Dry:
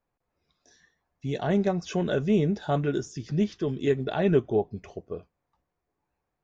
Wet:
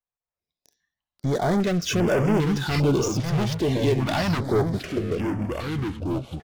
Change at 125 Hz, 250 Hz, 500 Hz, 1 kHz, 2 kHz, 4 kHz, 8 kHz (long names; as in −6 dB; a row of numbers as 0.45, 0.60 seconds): +6.5 dB, +4.0 dB, +2.5 dB, +5.5 dB, +7.5 dB, +10.0 dB, can't be measured